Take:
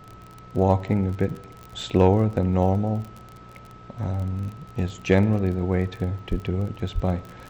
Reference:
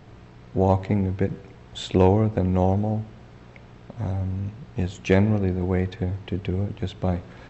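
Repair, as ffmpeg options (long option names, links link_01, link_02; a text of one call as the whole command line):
ffmpeg -i in.wav -filter_complex "[0:a]adeclick=threshold=4,bandreject=frequency=1300:width=30,asplit=3[link_01][link_02][link_03];[link_01]afade=type=out:start_time=6.3:duration=0.02[link_04];[link_02]highpass=frequency=140:width=0.5412,highpass=frequency=140:width=1.3066,afade=type=in:start_time=6.3:duration=0.02,afade=type=out:start_time=6.42:duration=0.02[link_05];[link_03]afade=type=in:start_time=6.42:duration=0.02[link_06];[link_04][link_05][link_06]amix=inputs=3:normalize=0,asplit=3[link_07][link_08][link_09];[link_07]afade=type=out:start_time=6.94:duration=0.02[link_10];[link_08]highpass=frequency=140:width=0.5412,highpass=frequency=140:width=1.3066,afade=type=in:start_time=6.94:duration=0.02,afade=type=out:start_time=7.06:duration=0.02[link_11];[link_09]afade=type=in:start_time=7.06:duration=0.02[link_12];[link_10][link_11][link_12]amix=inputs=3:normalize=0" out.wav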